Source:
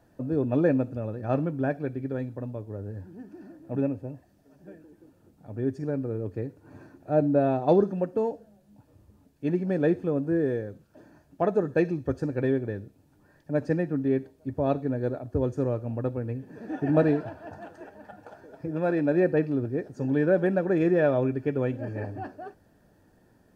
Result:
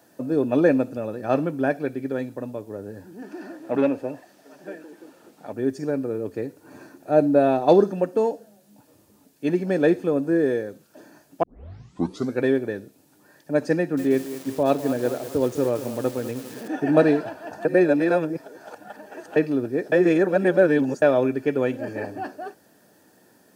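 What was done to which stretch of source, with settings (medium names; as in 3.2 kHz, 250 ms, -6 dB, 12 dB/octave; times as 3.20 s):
3.22–5.53 s: overdrive pedal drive 16 dB, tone 2.4 kHz, clips at -14.5 dBFS
11.43 s: tape start 0.96 s
13.77–16.68 s: bit-crushed delay 202 ms, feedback 55%, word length 7-bit, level -12.5 dB
17.65–19.36 s: reverse
19.92–21.02 s: reverse
whole clip: high-pass 220 Hz 12 dB/octave; treble shelf 3.4 kHz +11 dB; trim +5.5 dB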